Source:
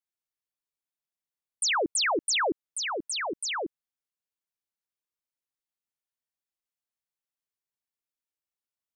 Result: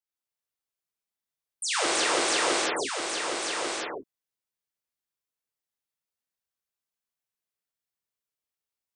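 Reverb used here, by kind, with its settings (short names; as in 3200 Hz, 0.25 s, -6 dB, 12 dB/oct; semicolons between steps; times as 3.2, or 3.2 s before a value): non-linear reverb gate 0.38 s flat, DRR -7.5 dB; gain -6.5 dB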